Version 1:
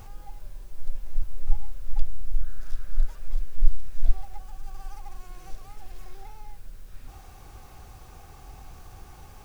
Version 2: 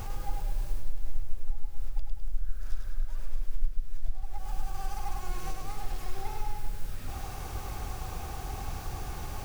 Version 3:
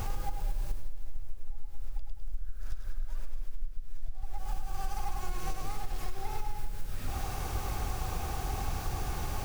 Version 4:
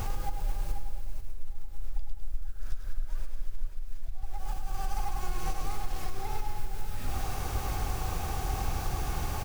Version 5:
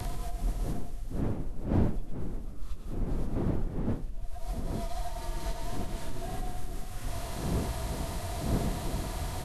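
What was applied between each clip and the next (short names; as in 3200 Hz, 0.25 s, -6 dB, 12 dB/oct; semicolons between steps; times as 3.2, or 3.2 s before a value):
compressor 5:1, threshold -31 dBFS, peak gain reduction 22 dB; split-band echo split 300 Hz, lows 0.146 s, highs 0.103 s, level -4 dB; gain +7.5 dB
compressor 10:1, threshold -28 dBFS, peak gain reduction 12 dB; gain +3 dB
short-mantissa float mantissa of 6-bit; echo 0.489 s -9 dB; gain +1.5 dB
inharmonic rescaling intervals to 88%; wind noise 240 Hz -36 dBFS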